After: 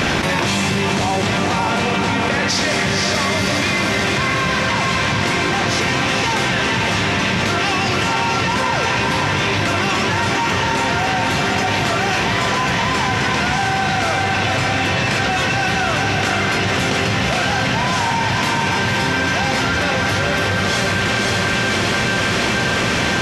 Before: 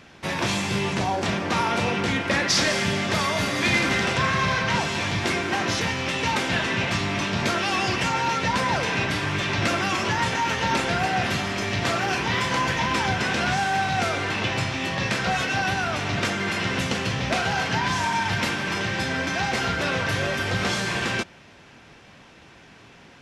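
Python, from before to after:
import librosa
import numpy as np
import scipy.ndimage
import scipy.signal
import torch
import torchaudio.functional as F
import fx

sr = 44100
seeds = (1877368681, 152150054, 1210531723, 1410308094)

y = fx.echo_diffused(x, sr, ms=511, feedback_pct=51, wet_db=-3)
y = fx.env_flatten(y, sr, amount_pct=100)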